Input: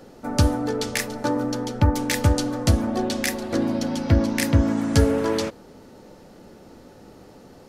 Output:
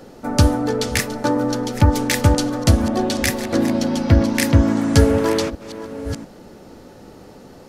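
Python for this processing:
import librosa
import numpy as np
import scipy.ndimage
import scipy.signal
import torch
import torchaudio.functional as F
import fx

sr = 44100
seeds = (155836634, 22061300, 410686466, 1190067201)

y = fx.reverse_delay(x, sr, ms=694, wet_db=-14)
y = F.gain(torch.from_numpy(y), 4.5).numpy()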